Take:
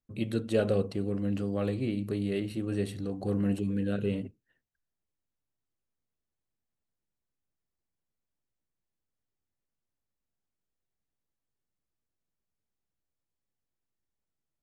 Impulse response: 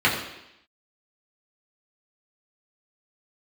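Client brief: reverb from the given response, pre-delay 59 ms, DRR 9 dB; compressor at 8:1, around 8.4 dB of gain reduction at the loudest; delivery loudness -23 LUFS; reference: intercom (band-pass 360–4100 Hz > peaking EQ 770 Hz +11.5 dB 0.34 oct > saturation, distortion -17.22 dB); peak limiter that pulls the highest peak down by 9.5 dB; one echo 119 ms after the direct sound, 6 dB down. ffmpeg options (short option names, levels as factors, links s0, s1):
-filter_complex "[0:a]acompressor=threshold=0.0316:ratio=8,alimiter=level_in=2.37:limit=0.0631:level=0:latency=1,volume=0.422,aecho=1:1:119:0.501,asplit=2[s0][s1];[1:a]atrim=start_sample=2205,adelay=59[s2];[s1][s2]afir=irnorm=-1:irlink=0,volume=0.0398[s3];[s0][s3]amix=inputs=2:normalize=0,highpass=360,lowpass=4100,equalizer=f=770:t=o:w=0.34:g=11.5,asoftclip=threshold=0.0158,volume=12.6"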